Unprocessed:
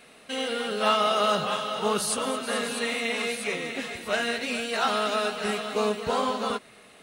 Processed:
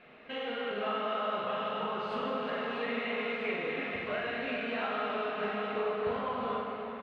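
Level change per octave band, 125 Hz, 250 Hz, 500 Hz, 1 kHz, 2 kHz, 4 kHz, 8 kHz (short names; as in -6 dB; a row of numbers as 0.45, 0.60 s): -6.0 dB, -6.0 dB, -5.5 dB, -7.0 dB, -6.0 dB, -12.0 dB, under -40 dB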